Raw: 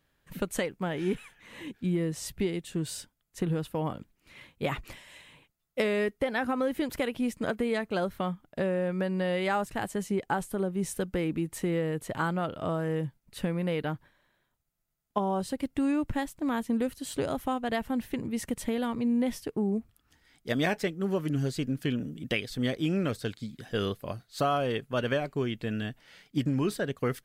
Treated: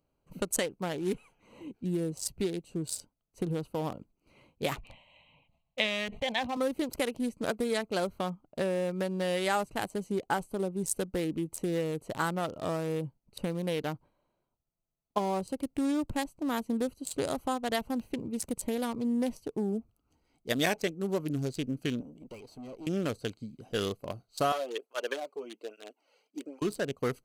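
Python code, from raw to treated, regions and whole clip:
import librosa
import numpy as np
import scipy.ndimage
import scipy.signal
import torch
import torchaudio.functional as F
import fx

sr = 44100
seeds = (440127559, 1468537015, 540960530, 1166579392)

y = fx.chain(x, sr, fx.lowpass_res(hz=3700.0, q=3.0),
    fx.fixed_phaser(hz=1400.0, stages=6),
    fx.sustainer(db_per_s=66.0), at=(4.79, 6.57))
y = fx.chain(y, sr, fx.highpass(hz=230.0, slope=6),
    fx.tube_stage(drive_db=38.0, bias=0.6), at=(22.01, 22.87))
y = fx.chain(y, sr, fx.highpass(hz=360.0, slope=24),
    fx.flanger_cancel(hz=1.2, depth_ms=3.3), at=(24.52, 26.62))
y = fx.wiener(y, sr, points=25)
y = fx.bass_treble(y, sr, bass_db=-5, treble_db=14)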